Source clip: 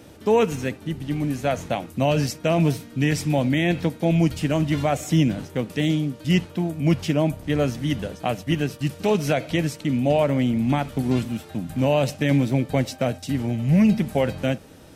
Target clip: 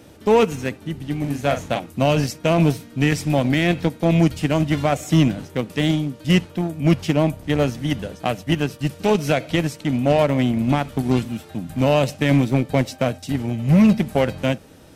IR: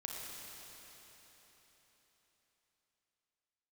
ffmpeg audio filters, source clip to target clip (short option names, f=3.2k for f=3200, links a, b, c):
-filter_complex "[0:a]asplit=2[a][b];[b]acrusher=bits=2:mix=0:aa=0.5,volume=-8dB[c];[a][c]amix=inputs=2:normalize=0,asettb=1/sr,asplit=3[d][e][f];[d]atrim=end=1.204[g];[e]atrim=start=1.2:end=1.8,asetpts=PTS-STARTPTS,afade=t=in:d=0.004:c=qsin,afade=t=out:st=0.596:d=0.004:c=qsin,asplit=2[h][i];[i]adelay=42,volume=-8dB[j];[h][j]amix=inputs=2:normalize=0,atrim=end_sample=26460[k];[f]atrim=start=1.796[l];[g][k]acrossfade=d=0.004:c1=hsin:c2=qsin[m];[m][l]acrossfade=d=0.004:c1=qsin:c2=hsin"